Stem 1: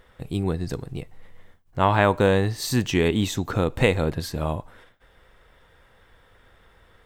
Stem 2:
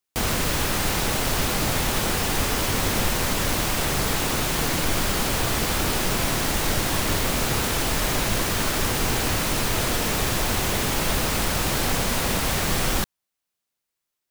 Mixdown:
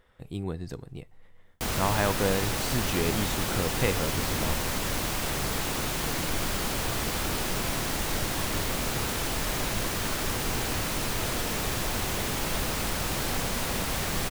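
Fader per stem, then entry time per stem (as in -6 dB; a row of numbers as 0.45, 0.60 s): -8.0, -6.0 dB; 0.00, 1.45 s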